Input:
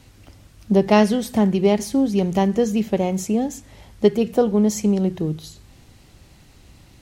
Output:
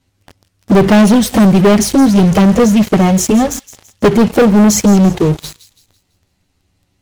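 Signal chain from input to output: touch-sensitive flanger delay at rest 11.9 ms, full sweep at -12 dBFS; waveshaping leveller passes 5; feedback echo behind a high-pass 166 ms, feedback 40%, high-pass 3.2 kHz, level -14 dB

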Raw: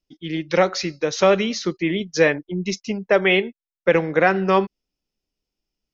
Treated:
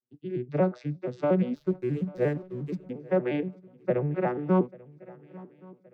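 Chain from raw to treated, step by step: vocoder on a broken chord minor triad, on B2, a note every 118 ms; low-pass 1.3 kHz 6 dB/octave; 1.55–2.90 s: hysteresis with a dead band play -40.5 dBFS; shuffle delay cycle 1121 ms, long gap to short 3:1, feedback 42%, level -22.5 dB; trim -6.5 dB

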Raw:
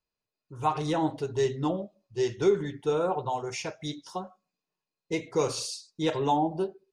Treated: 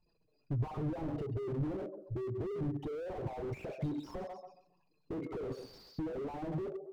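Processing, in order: resonances exaggerated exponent 3; in parallel at -4 dB: saturation -27 dBFS, distortion -9 dB; on the sum: peak limiter -21 dBFS, peak gain reduction 8 dB; low-pass that closes with the level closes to 660 Hz, closed at -23 dBFS; flange 0.64 Hz, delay 5.6 ms, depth 2.4 ms, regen +43%; on a send: thinning echo 137 ms, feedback 23%, high-pass 280 Hz, level -18 dB; on the sum: compression 8:1, threshold -44 dBFS, peak gain reduction 18.5 dB; slew-rate limiter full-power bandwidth 1.1 Hz; trim +14 dB

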